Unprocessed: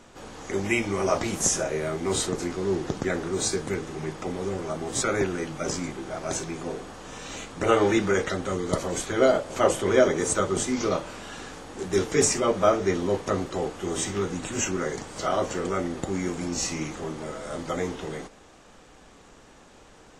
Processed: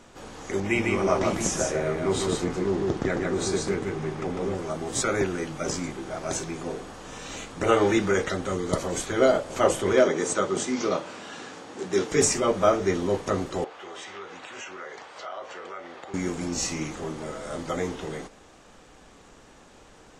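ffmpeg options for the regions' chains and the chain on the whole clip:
ffmpeg -i in.wav -filter_complex "[0:a]asettb=1/sr,asplit=3[link_01][link_02][link_03];[link_01]atrim=end=0.604[link_04];[link_02]atrim=start=0.6:end=4.55,asetpts=PTS-STARTPTS,afade=type=in:duration=0.004:curve=qsin,afade=type=out:start_time=3.946:duration=0.004:curve=qsin,aemphasis=mode=reproduction:type=cd,aecho=1:1:150:0.708,atrim=end_sample=174195[link_05];[link_03]atrim=start=4.546[link_06];[link_04][link_05]acrossfade=duration=0.004:curve1=hsin:curve2=qsin[link_07];[link_07][link_06]acrossfade=duration=0.004:curve1=qsin:curve2=hsin,asettb=1/sr,asplit=3[link_08][link_09][link_10];[link_08]atrim=end=9.934[link_11];[link_09]atrim=start=9.93:end=12.11,asetpts=PTS-STARTPTS,afade=type=in:duration=0.004:curve=qsin,afade=type=out:start_time=2.176:duration=0.004:curve=qsin,highpass=170,lowpass=7600,asoftclip=type=hard:threshold=-10dB[link_12];[link_10]atrim=start=12.106[link_13];[link_11][link_12]acrossfade=duration=0.004:curve1=hsin:curve2=qsin[link_14];[link_14][link_13]acrossfade=duration=0.004:curve1=qsin:curve2=hsin,asettb=1/sr,asplit=3[link_15][link_16][link_17];[link_15]atrim=end=13.644[link_18];[link_16]atrim=start=13.64:end=16.14,asetpts=PTS-STARTPTS,afade=type=in:duration=0.004:curve=qsin,afade=type=out:start_time=2.496:duration=0.004:curve=qsin,highpass=63,acrossover=split=510 4400:gain=0.0794 1 0.1[link_19][link_20][link_21];[link_19][link_20][link_21]amix=inputs=3:normalize=0,acompressor=threshold=-37dB:ratio=2.5:attack=3.2:release=140:knee=1:detection=peak[link_22];[link_17]atrim=start=16.136[link_23];[link_18][link_22]acrossfade=duration=0.004:curve1=hsin:curve2=qsin[link_24];[link_24][link_23]acrossfade=duration=0.004:curve1=qsin:curve2=hsin" out.wav

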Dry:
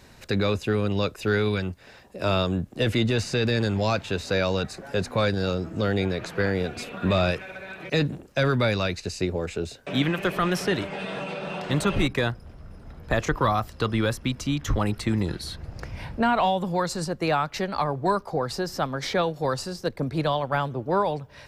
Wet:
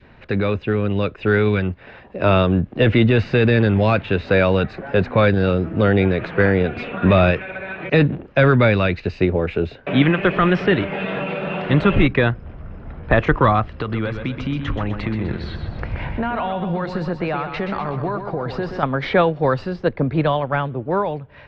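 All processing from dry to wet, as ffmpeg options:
ffmpeg -i in.wav -filter_complex "[0:a]asettb=1/sr,asplit=3[link_01][link_02][link_03];[link_01]atrim=end=13.674[link_04];[link_02]atrim=start=13.67:end=18.83,asetpts=PTS-STARTPTS,afade=type=in:duration=0.004:curve=qsin,afade=type=out:start_time=5.156:duration=0.004:curve=qsin,acompressor=threshold=-28dB:ratio=6:attack=3.2:release=140:knee=1:detection=peak,aecho=1:1:126|252|378|504|630|756:0.422|0.207|0.101|0.0496|0.0243|0.0119,atrim=end_sample=227556[link_05];[link_03]atrim=start=18.826[link_06];[link_04][link_05]acrossfade=duration=0.004:curve1=hsin:curve2=qsin[link_07];[link_07][link_06]acrossfade=duration=0.004:curve1=qsin:curve2=hsin,lowpass=frequency=2900:width=0.5412,lowpass=frequency=2900:width=1.3066,adynamicequalizer=threshold=0.0112:dfrequency=870:dqfactor=1.3:tfrequency=870:tqfactor=1.3:attack=5:release=100:ratio=0.375:range=2.5:mode=cutabove:tftype=bell,dynaudnorm=framelen=160:gausssize=17:maxgain=5dB,volume=4dB" out.wav

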